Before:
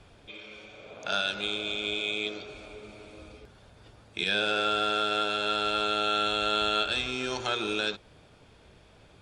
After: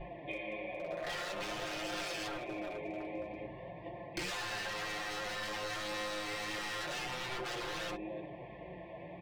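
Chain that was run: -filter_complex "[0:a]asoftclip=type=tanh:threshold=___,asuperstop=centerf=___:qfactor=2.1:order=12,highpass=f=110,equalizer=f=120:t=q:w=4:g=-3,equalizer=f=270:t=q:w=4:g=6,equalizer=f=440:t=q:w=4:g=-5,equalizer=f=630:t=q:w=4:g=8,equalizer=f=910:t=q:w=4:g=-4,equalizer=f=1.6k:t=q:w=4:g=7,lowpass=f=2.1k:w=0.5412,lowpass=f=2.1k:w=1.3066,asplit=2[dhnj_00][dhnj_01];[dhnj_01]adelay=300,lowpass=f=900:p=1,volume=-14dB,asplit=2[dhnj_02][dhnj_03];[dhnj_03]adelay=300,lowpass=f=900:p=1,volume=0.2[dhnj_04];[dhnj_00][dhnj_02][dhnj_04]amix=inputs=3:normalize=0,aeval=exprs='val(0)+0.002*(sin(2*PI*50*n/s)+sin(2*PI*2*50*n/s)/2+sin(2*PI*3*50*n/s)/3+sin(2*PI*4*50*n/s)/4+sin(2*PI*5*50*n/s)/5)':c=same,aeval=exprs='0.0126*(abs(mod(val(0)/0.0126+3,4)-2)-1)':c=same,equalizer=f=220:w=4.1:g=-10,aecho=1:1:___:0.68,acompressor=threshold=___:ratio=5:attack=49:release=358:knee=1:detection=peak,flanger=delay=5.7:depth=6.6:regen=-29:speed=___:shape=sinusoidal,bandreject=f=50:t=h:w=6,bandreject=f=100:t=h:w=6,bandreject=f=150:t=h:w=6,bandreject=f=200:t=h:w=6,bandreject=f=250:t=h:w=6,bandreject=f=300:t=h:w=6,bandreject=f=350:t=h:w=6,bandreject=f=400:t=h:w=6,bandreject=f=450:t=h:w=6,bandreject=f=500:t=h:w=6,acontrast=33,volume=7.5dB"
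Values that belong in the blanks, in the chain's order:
-23dB, 1400, 5.7, -48dB, 0.5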